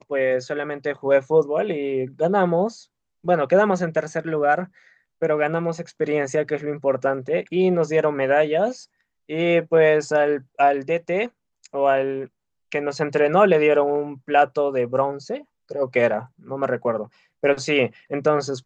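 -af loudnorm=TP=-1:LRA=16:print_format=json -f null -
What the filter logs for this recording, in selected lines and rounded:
"input_i" : "-21.7",
"input_tp" : "-3.6",
"input_lra" : "2.8",
"input_thresh" : "-32.1",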